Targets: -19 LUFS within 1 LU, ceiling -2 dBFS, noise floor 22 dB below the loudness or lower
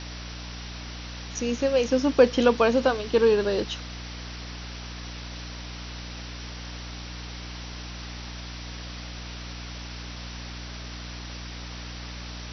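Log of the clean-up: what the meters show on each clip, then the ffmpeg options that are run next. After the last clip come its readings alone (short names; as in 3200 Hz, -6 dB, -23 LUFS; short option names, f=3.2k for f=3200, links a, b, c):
hum 60 Hz; harmonics up to 300 Hz; hum level -36 dBFS; noise floor -38 dBFS; noise floor target -51 dBFS; loudness -29.0 LUFS; peak -5.0 dBFS; loudness target -19.0 LUFS
-> -af "bandreject=f=60:t=h:w=6,bandreject=f=120:t=h:w=6,bandreject=f=180:t=h:w=6,bandreject=f=240:t=h:w=6,bandreject=f=300:t=h:w=6"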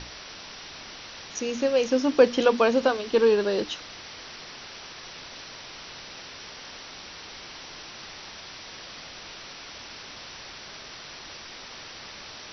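hum none; noise floor -43 dBFS; noise floor target -45 dBFS
-> -af "afftdn=nr=6:nf=-43"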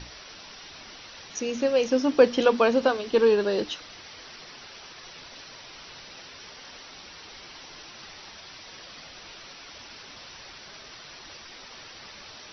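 noise floor -46 dBFS; loudness -23.0 LUFS; peak -4.5 dBFS; loudness target -19.0 LUFS
-> -af "volume=4dB,alimiter=limit=-2dB:level=0:latency=1"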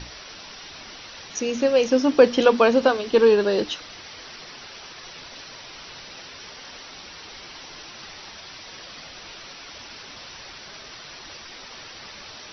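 loudness -19.5 LUFS; peak -2.0 dBFS; noise floor -42 dBFS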